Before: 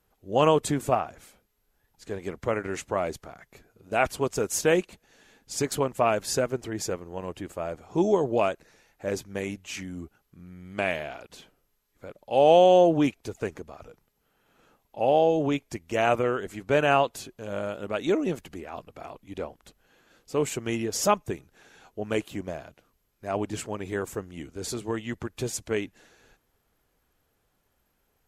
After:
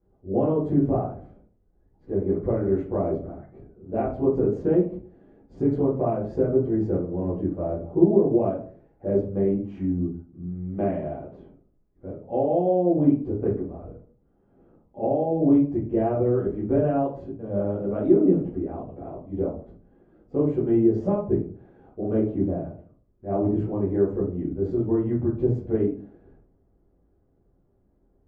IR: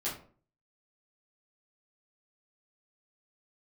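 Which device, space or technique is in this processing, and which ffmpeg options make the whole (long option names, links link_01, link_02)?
television next door: -filter_complex "[0:a]acompressor=threshold=-24dB:ratio=6,lowpass=450[link_01];[1:a]atrim=start_sample=2205[link_02];[link_01][link_02]afir=irnorm=-1:irlink=0,volume=6dB"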